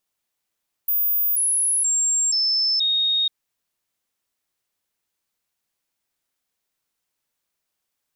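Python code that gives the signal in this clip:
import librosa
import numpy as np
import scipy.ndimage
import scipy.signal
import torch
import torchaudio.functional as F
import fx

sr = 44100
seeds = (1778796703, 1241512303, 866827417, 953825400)

y = fx.stepped_sweep(sr, from_hz=14900.0, direction='down', per_octave=2, tones=5, dwell_s=0.48, gap_s=0.0, level_db=-17.5)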